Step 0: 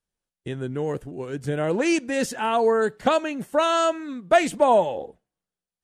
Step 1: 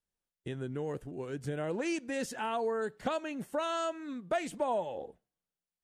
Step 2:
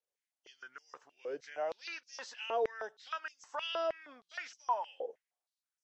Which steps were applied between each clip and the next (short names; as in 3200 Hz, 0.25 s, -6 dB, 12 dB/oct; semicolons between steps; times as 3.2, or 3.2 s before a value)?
compressor 2:1, threshold -29 dBFS, peak gain reduction 9.5 dB; gain -6 dB
nonlinear frequency compression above 2700 Hz 1.5:1; stepped high-pass 6.4 Hz 500–5700 Hz; gain -5 dB